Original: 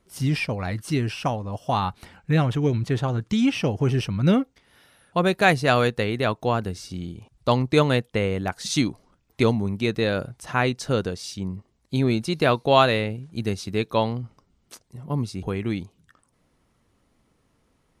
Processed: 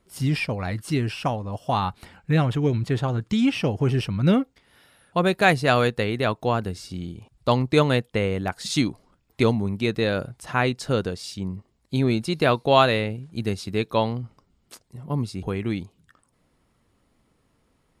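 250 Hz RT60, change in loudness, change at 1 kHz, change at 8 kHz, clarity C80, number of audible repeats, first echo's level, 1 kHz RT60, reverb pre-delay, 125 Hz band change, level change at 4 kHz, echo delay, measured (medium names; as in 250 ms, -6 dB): no reverb, 0.0 dB, 0.0 dB, -2.0 dB, no reverb, no echo, no echo, no reverb, no reverb, 0.0 dB, 0.0 dB, no echo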